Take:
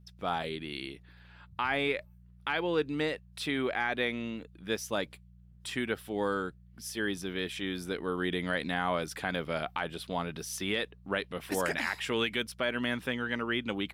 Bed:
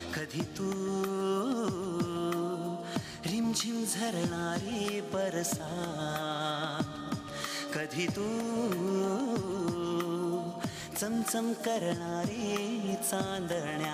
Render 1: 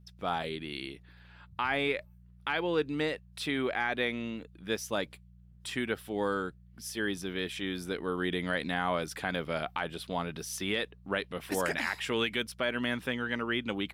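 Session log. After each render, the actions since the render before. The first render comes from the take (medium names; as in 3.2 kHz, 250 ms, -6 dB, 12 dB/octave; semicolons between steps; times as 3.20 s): no audible change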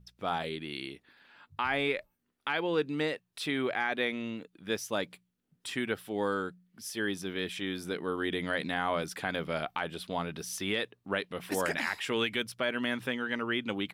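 de-hum 60 Hz, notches 3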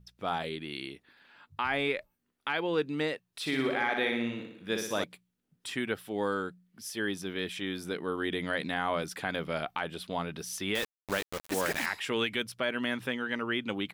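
3.40–5.04 s: flutter echo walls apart 10.2 m, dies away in 0.72 s; 10.75–11.86 s: word length cut 6-bit, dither none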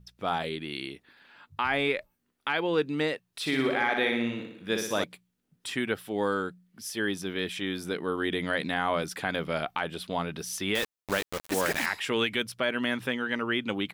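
trim +3 dB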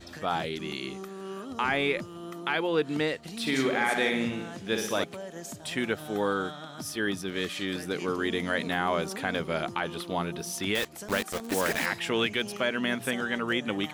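add bed -8 dB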